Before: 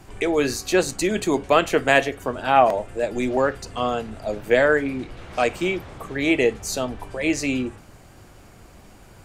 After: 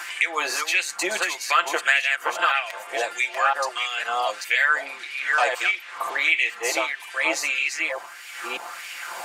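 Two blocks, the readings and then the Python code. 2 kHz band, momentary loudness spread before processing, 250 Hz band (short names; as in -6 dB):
+5.0 dB, 12 LU, -17.5 dB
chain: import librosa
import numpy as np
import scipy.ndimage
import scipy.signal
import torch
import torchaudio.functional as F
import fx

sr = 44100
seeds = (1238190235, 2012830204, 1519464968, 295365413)

y = fx.reverse_delay(x, sr, ms=504, wet_db=-5.0)
y = fx.low_shelf(y, sr, hz=110.0, db=-8.5)
y = y + 0.61 * np.pad(y, (int(5.8 * sr / 1000.0), 0))[:len(y)]
y = fx.filter_lfo_highpass(y, sr, shape='sine', hz=1.6, low_hz=820.0, high_hz=2400.0, q=2.4)
y = fx.band_squash(y, sr, depth_pct=70)
y = y * 10.0 ** (-1.5 / 20.0)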